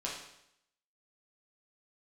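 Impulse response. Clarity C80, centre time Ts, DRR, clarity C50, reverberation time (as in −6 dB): 6.5 dB, 45 ms, −5.0 dB, 3.0 dB, 0.75 s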